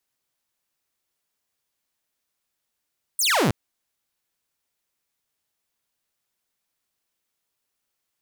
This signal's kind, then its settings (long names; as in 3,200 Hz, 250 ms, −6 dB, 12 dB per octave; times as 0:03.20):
single falling chirp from 9,700 Hz, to 95 Hz, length 0.32 s saw, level −15 dB